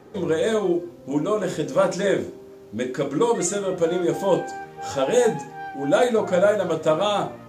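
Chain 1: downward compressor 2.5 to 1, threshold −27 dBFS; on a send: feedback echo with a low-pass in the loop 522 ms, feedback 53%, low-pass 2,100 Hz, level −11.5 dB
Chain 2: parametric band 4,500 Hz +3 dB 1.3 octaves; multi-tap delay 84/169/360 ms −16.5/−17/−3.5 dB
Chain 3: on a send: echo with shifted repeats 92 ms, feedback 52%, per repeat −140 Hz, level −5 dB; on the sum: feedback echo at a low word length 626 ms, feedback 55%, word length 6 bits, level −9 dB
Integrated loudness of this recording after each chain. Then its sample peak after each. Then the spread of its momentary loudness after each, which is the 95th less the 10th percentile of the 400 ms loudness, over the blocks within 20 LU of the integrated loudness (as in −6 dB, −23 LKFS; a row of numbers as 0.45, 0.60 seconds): −29.0, −21.0, −21.0 LKFS; −14.5, −4.5, −5.5 dBFS; 6, 7, 8 LU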